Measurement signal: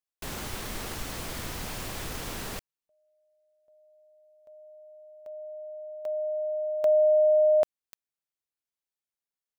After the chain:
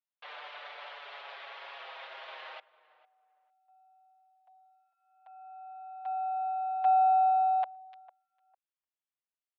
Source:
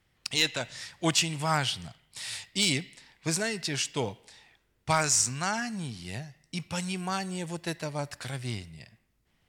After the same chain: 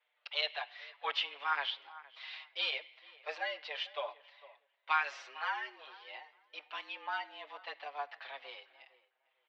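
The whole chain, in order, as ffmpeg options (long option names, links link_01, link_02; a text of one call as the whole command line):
ffmpeg -i in.wav -filter_complex "[0:a]aeval=exprs='if(lt(val(0),0),0.708*val(0),val(0))':channel_layout=same,asplit=2[link_01][link_02];[link_02]adelay=452,lowpass=frequency=1500:poles=1,volume=-18dB,asplit=2[link_03][link_04];[link_04]adelay=452,lowpass=frequency=1500:poles=1,volume=0.21[link_05];[link_03][link_05]amix=inputs=2:normalize=0[link_06];[link_01][link_06]amix=inputs=2:normalize=0,highpass=frequency=440:width_type=q:width=0.5412,highpass=frequency=440:width_type=q:width=1.307,lowpass=frequency=3500:width_type=q:width=0.5176,lowpass=frequency=3500:width_type=q:width=0.7071,lowpass=frequency=3500:width_type=q:width=1.932,afreqshift=140,asplit=2[link_07][link_08];[link_08]adelay=6.2,afreqshift=-0.3[link_09];[link_07][link_09]amix=inputs=2:normalize=1" out.wav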